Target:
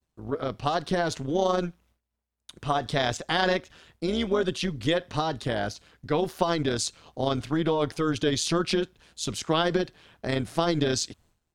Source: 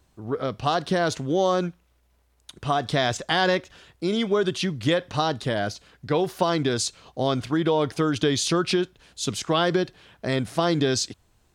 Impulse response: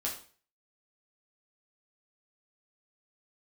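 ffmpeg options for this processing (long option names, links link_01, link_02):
-af "agate=range=-33dB:threshold=-53dB:ratio=3:detection=peak,tremolo=f=160:d=0.621"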